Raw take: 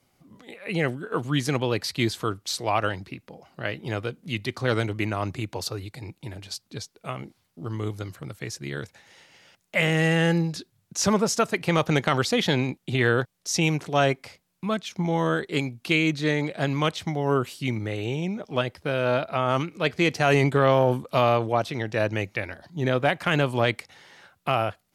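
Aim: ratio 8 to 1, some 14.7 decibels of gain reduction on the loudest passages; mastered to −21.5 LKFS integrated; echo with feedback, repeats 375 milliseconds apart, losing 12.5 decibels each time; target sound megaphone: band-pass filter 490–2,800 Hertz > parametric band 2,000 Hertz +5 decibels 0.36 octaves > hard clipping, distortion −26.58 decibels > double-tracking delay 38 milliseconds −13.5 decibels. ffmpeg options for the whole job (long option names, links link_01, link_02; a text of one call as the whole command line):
ffmpeg -i in.wav -filter_complex "[0:a]acompressor=threshold=-31dB:ratio=8,highpass=490,lowpass=2800,equalizer=frequency=2000:width_type=o:width=0.36:gain=5,aecho=1:1:375|750|1125:0.237|0.0569|0.0137,asoftclip=type=hard:threshold=-24dB,asplit=2[link_01][link_02];[link_02]adelay=38,volume=-13.5dB[link_03];[link_01][link_03]amix=inputs=2:normalize=0,volume=18dB" out.wav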